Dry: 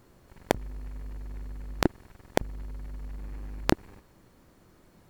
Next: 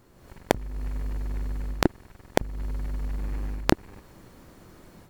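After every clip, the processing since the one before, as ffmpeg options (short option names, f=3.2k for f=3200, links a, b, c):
-af "dynaudnorm=f=140:g=3:m=8.5dB"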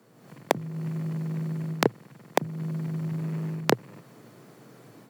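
-af "afreqshift=110,volume=-1dB"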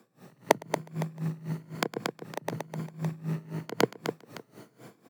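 -af "afftfilt=real='re*pow(10,8/40*sin(2*PI*(1.8*log(max(b,1)*sr/1024/100)/log(2)-(1)*(pts-256)/sr)))':imag='im*pow(10,8/40*sin(2*PI*(1.8*log(max(b,1)*sr/1024/100)/log(2)-(1)*(pts-256)/sr)))':win_size=1024:overlap=0.75,aecho=1:1:110|231|364.1|510.5|671.6:0.631|0.398|0.251|0.158|0.1,aeval=exprs='val(0)*pow(10,-21*(0.5-0.5*cos(2*PI*3.9*n/s))/20)':c=same,volume=1.5dB"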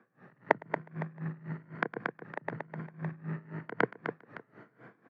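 -af "lowpass=f=1.7k:t=q:w=3.2,volume=-5.5dB"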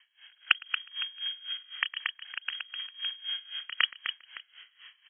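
-af "lowpass=f=2.9k:t=q:w=0.5098,lowpass=f=2.9k:t=q:w=0.6013,lowpass=f=2.9k:t=q:w=0.9,lowpass=f=2.9k:t=q:w=2.563,afreqshift=-3400,volume=2dB"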